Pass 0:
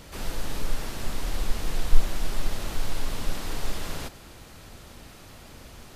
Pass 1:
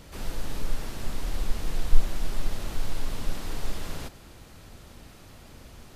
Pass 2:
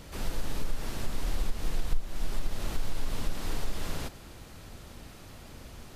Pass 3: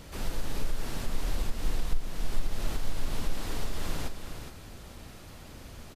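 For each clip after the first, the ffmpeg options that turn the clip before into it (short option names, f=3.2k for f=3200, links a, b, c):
-af "lowshelf=f=390:g=3.5,volume=-4dB"
-af "acompressor=threshold=-23dB:ratio=4,volume=1dB"
-af "aecho=1:1:415:0.398"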